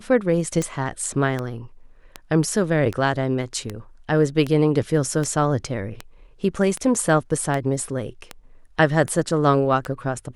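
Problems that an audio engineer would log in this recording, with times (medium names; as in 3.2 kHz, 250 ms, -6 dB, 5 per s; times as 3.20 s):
tick 78 rpm -13 dBFS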